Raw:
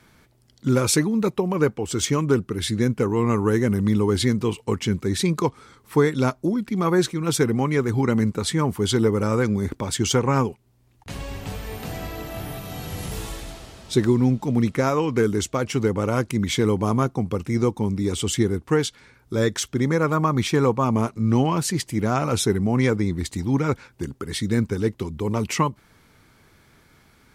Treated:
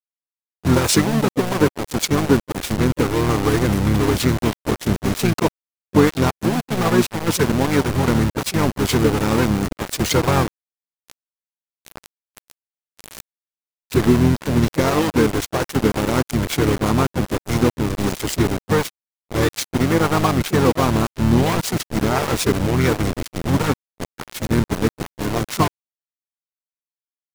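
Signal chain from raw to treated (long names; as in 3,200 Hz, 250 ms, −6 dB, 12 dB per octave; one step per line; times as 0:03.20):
centre clipping without the shift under −21.5 dBFS
pitch-shifted copies added −7 semitones −3 dB, +3 semitones −15 dB
level +2 dB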